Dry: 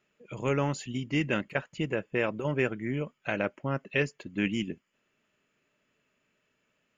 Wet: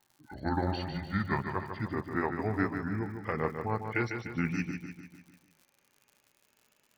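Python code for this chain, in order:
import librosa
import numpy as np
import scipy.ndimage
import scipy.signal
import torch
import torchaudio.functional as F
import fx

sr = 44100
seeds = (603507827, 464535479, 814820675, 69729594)

p1 = fx.pitch_glide(x, sr, semitones=-8.5, runs='ending unshifted')
p2 = fx.peak_eq(p1, sr, hz=840.0, db=9.5, octaves=0.35)
p3 = p2 + fx.echo_feedback(p2, sr, ms=149, feedback_pct=52, wet_db=-7.0, dry=0)
p4 = fx.dmg_crackle(p3, sr, seeds[0], per_s=110.0, level_db=-50.0)
p5 = fx.rider(p4, sr, range_db=10, speed_s=2.0)
p6 = p4 + F.gain(torch.from_numpy(p5), 1.5).numpy()
p7 = fx.high_shelf(p6, sr, hz=4600.0, db=5.5)
y = F.gain(torch.from_numpy(p7), -9.0).numpy()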